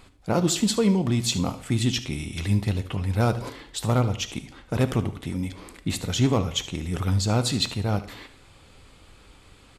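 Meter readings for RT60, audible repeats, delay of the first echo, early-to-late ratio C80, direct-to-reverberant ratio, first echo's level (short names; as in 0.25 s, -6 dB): 0.75 s, 1, 74 ms, 18.0 dB, 10.5 dB, -15.5 dB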